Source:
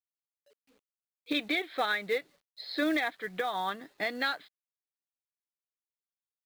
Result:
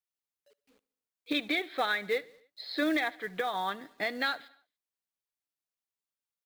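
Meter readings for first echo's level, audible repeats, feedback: −23.0 dB, 3, 58%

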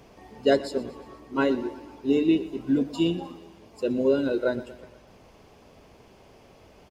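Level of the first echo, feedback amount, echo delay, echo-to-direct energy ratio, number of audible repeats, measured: −17.0 dB, 55%, 120 ms, −15.5 dB, 4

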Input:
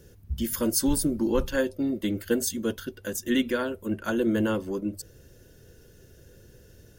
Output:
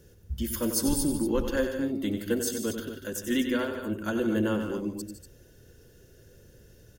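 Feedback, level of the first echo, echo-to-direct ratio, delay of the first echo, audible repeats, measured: repeats not evenly spaced, −8.5 dB, −5.0 dB, 93 ms, 3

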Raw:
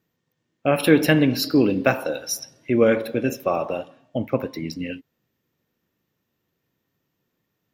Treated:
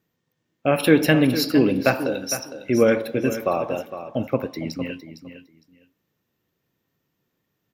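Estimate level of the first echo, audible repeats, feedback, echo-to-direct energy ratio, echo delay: −11.5 dB, 2, 17%, −11.5 dB, 458 ms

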